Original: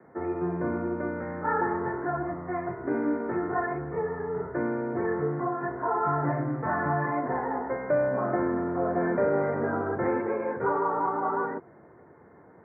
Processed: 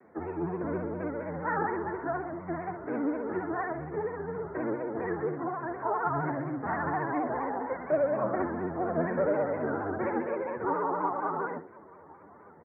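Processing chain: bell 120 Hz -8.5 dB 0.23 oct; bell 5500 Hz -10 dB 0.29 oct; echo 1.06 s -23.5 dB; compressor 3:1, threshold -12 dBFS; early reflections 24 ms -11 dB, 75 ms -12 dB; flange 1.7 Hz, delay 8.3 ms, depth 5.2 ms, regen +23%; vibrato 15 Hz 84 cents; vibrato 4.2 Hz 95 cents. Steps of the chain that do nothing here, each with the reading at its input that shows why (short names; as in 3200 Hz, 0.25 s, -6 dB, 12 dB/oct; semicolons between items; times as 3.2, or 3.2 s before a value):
bell 5500 Hz: input band ends at 1900 Hz; compressor, threshold -12 dBFS: input peak -14.5 dBFS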